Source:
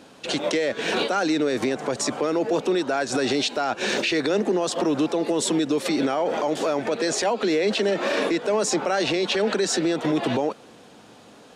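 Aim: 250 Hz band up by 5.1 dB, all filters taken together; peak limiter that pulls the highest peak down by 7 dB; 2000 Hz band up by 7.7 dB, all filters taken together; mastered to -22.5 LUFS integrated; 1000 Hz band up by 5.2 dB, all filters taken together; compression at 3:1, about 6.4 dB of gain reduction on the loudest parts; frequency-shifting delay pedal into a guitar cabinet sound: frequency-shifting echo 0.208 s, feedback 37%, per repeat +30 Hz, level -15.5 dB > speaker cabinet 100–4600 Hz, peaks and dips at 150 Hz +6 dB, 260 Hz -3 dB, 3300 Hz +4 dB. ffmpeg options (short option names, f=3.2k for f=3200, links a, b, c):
-filter_complex "[0:a]equalizer=f=250:t=o:g=8,equalizer=f=1k:t=o:g=4.5,equalizer=f=2k:t=o:g=8,acompressor=threshold=-22dB:ratio=3,alimiter=limit=-18dB:level=0:latency=1,asplit=4[a][b][c][d];[b]adelay=208,afreqshift=30,volume=-15.5dB[e];[c]adelay=416,afreqshift=60,volume=-24.1dB[f];[d]adelay=624,afreqshift=90,volume=-32.8dB[g];[a][e][f][g]amix=inputs=4:normalize=0,highpass=100,equalizer=f=150:t=q:w=4:g=6,equalizer=f=260:t=q:w=4:g=-3,equalizer=f=3.3k:t=q:w=4:g=4,lowpass=f=4.6k:w=0.5412,lowpass=f=4.6k:w=1.3066,volume=4.5dB"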